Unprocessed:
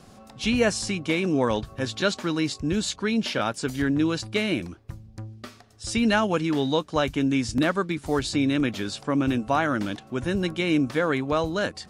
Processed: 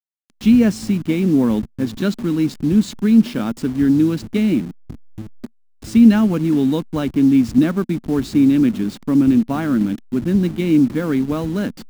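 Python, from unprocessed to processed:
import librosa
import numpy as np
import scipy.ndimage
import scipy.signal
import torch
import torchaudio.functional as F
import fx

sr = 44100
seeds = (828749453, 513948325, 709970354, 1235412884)

y = fx.delta_hold(x, sr, step_db=-31.0)
y = fx.curve_eq(y, sr, hz=(110.0, 230.0, 560.0), db=(0, 12, -6))
y = F.gain(torch.from_numpy(y), 2.5).numpy()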